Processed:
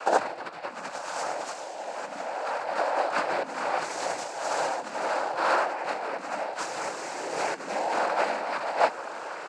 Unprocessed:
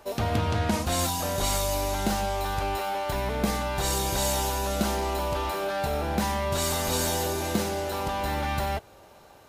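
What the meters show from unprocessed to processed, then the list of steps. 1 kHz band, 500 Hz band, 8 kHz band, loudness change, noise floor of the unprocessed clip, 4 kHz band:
+1.5 dB, 0.0 dB, -9.5 dB, -2.0 dB, -52 dBFS, -7.5 dB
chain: rattle on loud lows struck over -36 dBFS, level -26 dBFS; one-sided clip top -19.5 dBFS; doubling 24 ms -5.5 dB; delay 78 ms -5.5 dB; compressor with a negative ratio -31 dBFS, ratio -0.5; peaking EQ 1.3 kHz +10.5 dB 2.2 oct; noise-vocoded speech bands 8; dynamic bell 3.2 kHz, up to -8 dB, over -49 dBFS, Q 1.7; high-pass 330 Hz 12 dB/octave

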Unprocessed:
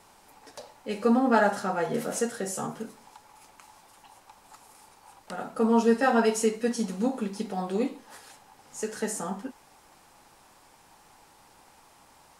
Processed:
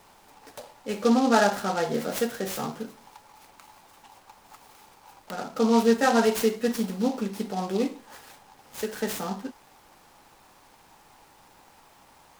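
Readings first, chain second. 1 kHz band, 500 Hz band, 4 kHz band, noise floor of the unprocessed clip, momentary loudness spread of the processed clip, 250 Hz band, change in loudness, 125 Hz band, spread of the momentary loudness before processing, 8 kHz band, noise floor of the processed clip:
+1.5 dB, +1.5 dB, +6.5 dB, -58 dBFS, 18 LU, +1.5 dB, +1.5 dB, +1.5 dB, 19 LU, -0.5 dB, -56 dBFS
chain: delay time shaken by noise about 4.1 kHz, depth 0.035 ms; trim +1.5 dB

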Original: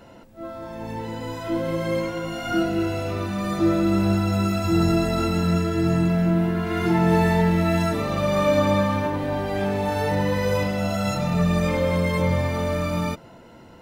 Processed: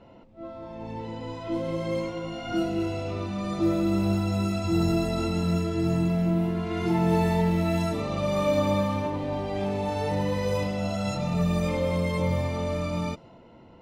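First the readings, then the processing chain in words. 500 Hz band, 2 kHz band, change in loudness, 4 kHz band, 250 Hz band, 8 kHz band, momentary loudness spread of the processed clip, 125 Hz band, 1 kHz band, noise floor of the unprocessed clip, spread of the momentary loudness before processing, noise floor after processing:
-4.0 dB, -7.5 dB, -4.5 dB, -4.5 dB, -4.0 dB, -5.0 dB, 10 LU, -4.0 dB, -5.5 dB, -47 dBFS, 10 LU, -51 dBFS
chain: peaking EQ 1.6 kHz -10 dB 0.43 oct; level-controlled noise filter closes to 2.9 kHz, open at -16.5 dBFS; trim -4 dB

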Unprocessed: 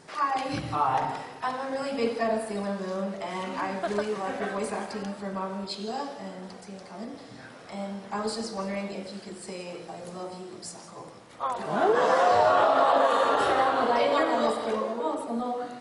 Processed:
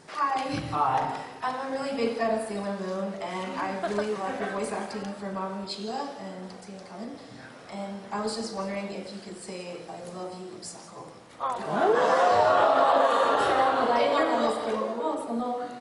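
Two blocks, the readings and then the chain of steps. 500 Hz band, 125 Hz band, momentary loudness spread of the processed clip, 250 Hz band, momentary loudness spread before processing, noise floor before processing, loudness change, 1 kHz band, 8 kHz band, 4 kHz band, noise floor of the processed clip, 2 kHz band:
0.0 dB, 0.0 dB, 19 LU, 0.0 dB, 19 LU, -46 dBFS, 0.0 dB, 0.0 dB, 0.0 dB, 0.0 dB, -46 dBFS, 0.0 dB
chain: doubling 38 ms -14 dB

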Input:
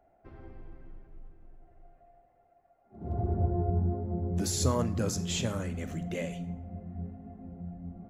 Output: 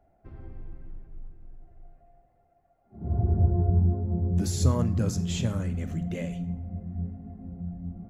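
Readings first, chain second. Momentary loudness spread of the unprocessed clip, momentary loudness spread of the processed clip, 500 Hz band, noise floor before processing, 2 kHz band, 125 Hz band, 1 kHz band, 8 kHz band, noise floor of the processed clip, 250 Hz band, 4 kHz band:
18 LU, 18 LU, -1.0 dB, -67 dBFS, -2.0 dB, +6.5 dB, -2.0 dB, -3.0 dB, -66 dBFS, +3.5 dB, -2.5 dB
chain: tone controls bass +9 dB, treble -1 dB; trim -2 dB

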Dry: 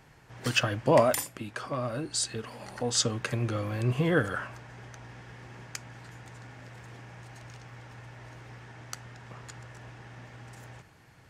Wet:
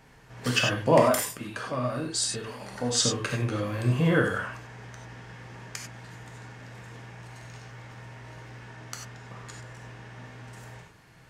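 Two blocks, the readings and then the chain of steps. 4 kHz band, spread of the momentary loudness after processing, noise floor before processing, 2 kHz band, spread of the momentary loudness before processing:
+3.0 dB, 21 LU, -57 dBFS, +3.0 dB, 21 LU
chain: gated-style reverb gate 120 ms flat, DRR 0.5 dB

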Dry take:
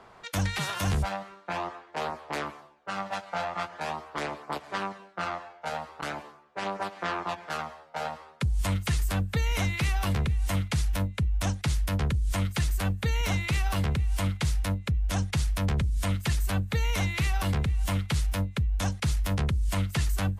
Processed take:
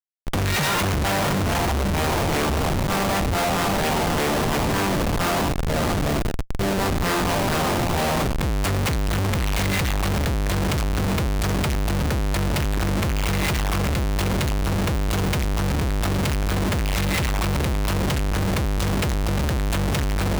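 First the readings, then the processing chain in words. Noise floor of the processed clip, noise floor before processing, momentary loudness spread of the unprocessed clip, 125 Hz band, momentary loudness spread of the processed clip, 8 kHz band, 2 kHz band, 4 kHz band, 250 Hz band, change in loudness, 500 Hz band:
-22 dBFS, -53 dBFS, 8 LU, +5.0 dB, 2 LU, +9.0 dB, +8.0 dB, +8.5 dB, +10.0 dB, +7.0 dB, +12.0 dB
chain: time-frequency box 5.42–6.74 s, 740–3000 Hz -26 dB; peaking EQ 1.4 kHz -2 dB 0.26 oct; echo that smears into a reverb 618 ms, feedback 47%, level -8 dB; transient shaper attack -12 dB, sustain +2 dB; Schmitt trigger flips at -37 dBFS; trim +7 dB

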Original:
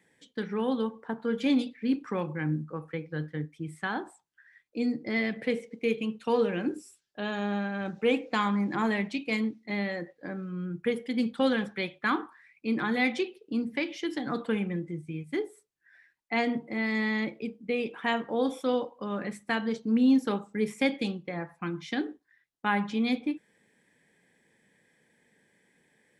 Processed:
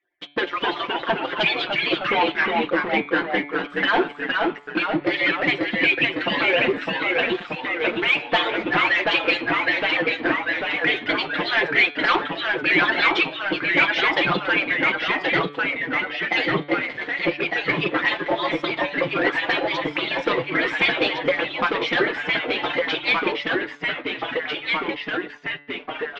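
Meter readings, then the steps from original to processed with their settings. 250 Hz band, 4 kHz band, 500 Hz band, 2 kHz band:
+1.0 dB, +16.0 dB, +7.0 dB, +15.5 dB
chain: harmonic-percussive separation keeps percussive; waveshaping leveller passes 5; low-pass 3.3 kHz 24 dB/octave; bass shelf 250 Hz -10.5 dB; comb 5.7 ms; dynamic bell 1.3 kHz, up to -5 dB, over -34 dBFS, Q 1.2; ever faster or slower copies 236 ms, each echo -1 st, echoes 3; de-hum 144.5 Hz, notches 32; trim +5 dB

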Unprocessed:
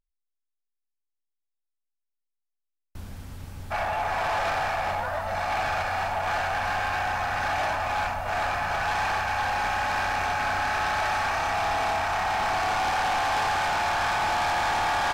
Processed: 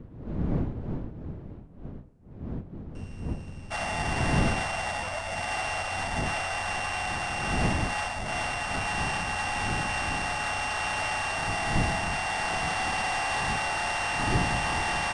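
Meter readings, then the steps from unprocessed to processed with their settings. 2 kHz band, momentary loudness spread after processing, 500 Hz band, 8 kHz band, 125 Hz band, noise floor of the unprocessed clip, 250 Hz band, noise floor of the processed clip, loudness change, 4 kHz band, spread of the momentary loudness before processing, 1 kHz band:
-2.0 dB, 12 LU, -3.5 dB, +3.5 dB, +6.5 dB, -82 dBFS, +8.5 dB, -44 dBFS, -3.0 dB, +0.5 dB, 4 LU, -5.5 dB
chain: sorted samples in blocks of 16 samples; wind noise 190 Hz -31 dBFS; trim -3.5 dB; Nellymoser 44 kbps 22.05 kHz

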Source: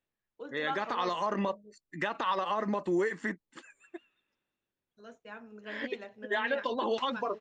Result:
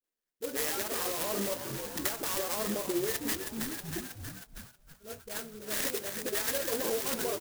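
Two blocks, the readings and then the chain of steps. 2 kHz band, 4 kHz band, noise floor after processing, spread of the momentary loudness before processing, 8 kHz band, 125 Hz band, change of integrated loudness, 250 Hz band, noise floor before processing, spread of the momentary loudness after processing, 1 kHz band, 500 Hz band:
-3.0 dB, +4.0 dB, under -85 dBFS, 18 LU, +24.0 dB, +1.0 dB, 0.0 dB, -1.5 dB, under -85 dBFS, 13 LU, -8.0 dB, -1.0 dB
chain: bass shelf 220 Hz -8 dB; peak limiter -26 dBFS, peak gain reduction 6.5 dB; careless resampling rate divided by 6×, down none, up hold; graphic EQ 125/250/500/1000/2000/4000 Hz -12/+4/+5/-10/+8/+9 dB; on a send: frequency-shifting echo 318 ms, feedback 65%, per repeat -64 Hz, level -11 dB; on the sum: compression 4:1, threshold -35 dBFS, peak gain reduction 8 dB; hum notches 60/120/180/240/300/360/420 Hz; gate -53 dBFS, range -11 dB; phase dispersion highs, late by 41 ms, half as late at 450 Hz; sampling jitter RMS 0.13 ms; trim +6 dB

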